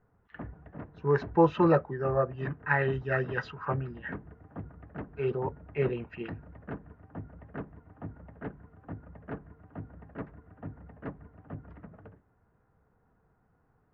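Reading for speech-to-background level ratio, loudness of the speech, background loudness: 16.0 dB, -29.5 LUFS, -45.5 LUFS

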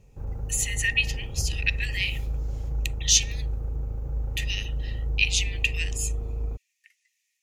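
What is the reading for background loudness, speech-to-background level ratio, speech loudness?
-32.5 LUFS, 6.5 dB, -26.0 LUFS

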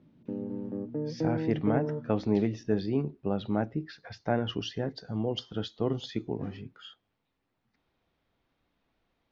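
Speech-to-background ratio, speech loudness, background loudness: 2.5 dB, -32.0 LUFS, -34.5 LUFS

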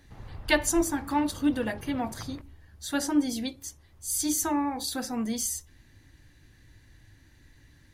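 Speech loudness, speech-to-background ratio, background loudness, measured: -28.5 LUFS, 16.5 dB, -45.0 LUFS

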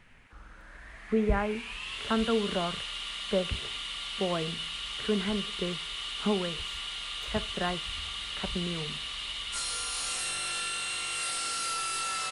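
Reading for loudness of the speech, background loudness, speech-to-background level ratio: -33.0 LUFS, -33.5 LUFS, 0.5 dB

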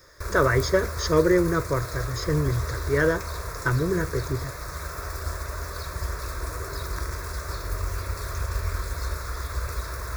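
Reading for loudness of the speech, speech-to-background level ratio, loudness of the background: -25.0 LUFS, 7.5 dB, -32.5 LUFS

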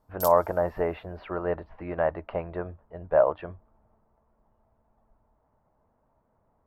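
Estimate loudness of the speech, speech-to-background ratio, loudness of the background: -27.5 LUFS, 8.5 dB, -36.0 LUFS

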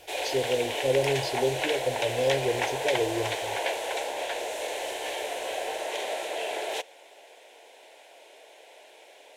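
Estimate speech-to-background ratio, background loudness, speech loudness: 1.0 dB, -30.5 LUFS, -29.5 LUFS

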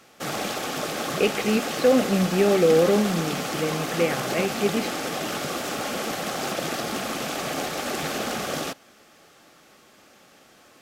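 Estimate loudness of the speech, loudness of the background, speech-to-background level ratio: -23.5 LUFS, -28.5 LUFS, 5.0 dB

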